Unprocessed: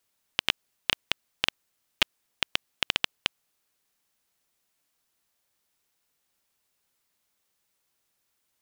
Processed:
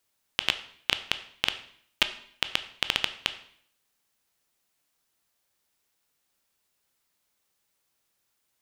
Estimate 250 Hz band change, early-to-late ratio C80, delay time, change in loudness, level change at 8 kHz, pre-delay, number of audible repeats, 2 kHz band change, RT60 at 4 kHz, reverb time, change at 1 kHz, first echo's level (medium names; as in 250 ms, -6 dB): 0.0 dB, 16.0 dB, no echo, +0.5 dB, +0.5 dB, 7 ms, no echo, +0.5 dB, 0.60 s, 0.60 s, +0.5 dB, no echo